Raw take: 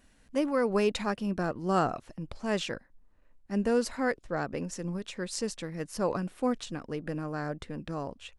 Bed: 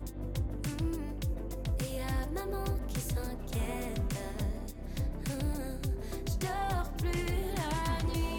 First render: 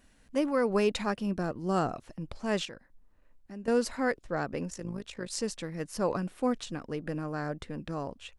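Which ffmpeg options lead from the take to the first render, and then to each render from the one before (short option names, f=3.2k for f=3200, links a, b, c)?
-filter_complex "[0:a]asettb=1/sr,asplit=3[a][b][c];[a]atrim=end=1.354[d];[b]atrim=start=1.35:end=2.04,asetpts=PTS-STARTPTS,afade=t=in:d=0.004:c=qsin,afade=t=out:st=0.686:d=0.004:c=qsin,equalizer=f=1.5k:w=0.44:g=-4[e];[c]atrim=start=2.036[f];[d][e]acrossfade=d=0.004:c1=hsin:c2=qsin[g];[g][f]acrossfade=d=0.004:c1=qsin:c2=hsin,asettb=1/sr,asplit=3[h][i][j];[h]atrim=end=2.654[k];[i]atrim=start=2.65:end=3.68,asetpts=PTS-STARTPTS,afade=t=in:d=0.004:c=qsin,afade=t=out:st=1.026:d=0.004:c=qsin,acompressor=threshold=-45dB:ratio=2.5:attack=3.2:release=140:knee=1:detection=peak[l];[j]atrim=start=3.676[m];[k][l]acrossfade=d=0.004:c1=hsin:c2=qsin[n];[n][m]acrossfade=d=0.004:c1=qsin:c2=hsin,asettb=1/sr,asplit=3[o][p][q];[o]atrim=end=4.704[r];[p]atrim=start=4.7:end=5.31,asetpts=PTS-STARTPTS,afade=t=in:d=0.004:c=qsin,afade=t=out:st=0.606:d=0.004:c=qsin,tremolo=f=53:d=0.71[s];[q]atrim=start=5.306[t];[r][s]acrossfade=d=0.004:c1=hsin:c2=qsin[u];[u][t]acrossfade=d=0.004:c1=qsin:c2=hsin"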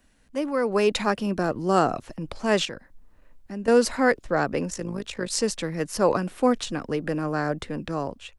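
-filter_complex "[0:a]acrossover=split=220|570|4400[a][b][c][d];[a]alimiter=level_in=17dB:limit=-24dB:level=0:latency=1,volume=-17dB[e];[e][b][c][d]amix=inputs=4:normalize=0,dynaudnorm=f=320:g=5:m=9dB"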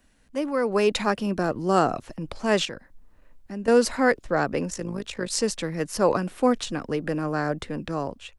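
-af anull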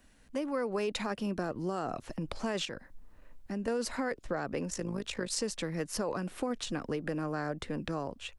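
-af "alimiter=limit=-14.5dB:level=0:latency=1:release=13,acompressor=threshold=-33dB:ratio=3"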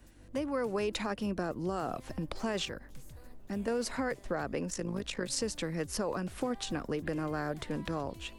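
-filter_complex "[1:a]volume=-18dB[a];[0:a][a]amix=inputs=2:normalize=0"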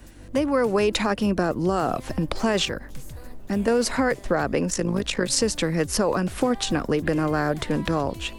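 -af "volume=11.5dB"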